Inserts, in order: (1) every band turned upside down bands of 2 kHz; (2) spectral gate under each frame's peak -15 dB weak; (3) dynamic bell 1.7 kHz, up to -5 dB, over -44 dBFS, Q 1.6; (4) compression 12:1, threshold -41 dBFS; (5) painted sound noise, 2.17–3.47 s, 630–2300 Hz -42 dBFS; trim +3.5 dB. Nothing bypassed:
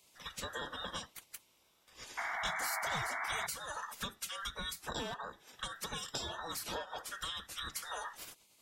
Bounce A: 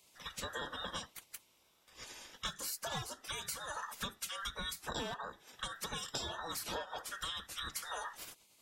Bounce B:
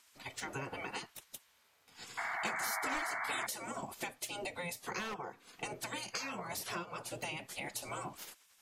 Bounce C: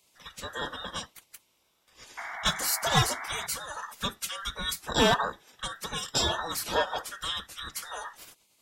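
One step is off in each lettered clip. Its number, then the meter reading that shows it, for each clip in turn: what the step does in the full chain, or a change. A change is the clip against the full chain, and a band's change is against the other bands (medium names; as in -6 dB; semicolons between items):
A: 5, 2 kHz band -4.5 dB; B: 1, 4 kHz band -5.0 dB; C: 4, mean gain reduction 6.5 dB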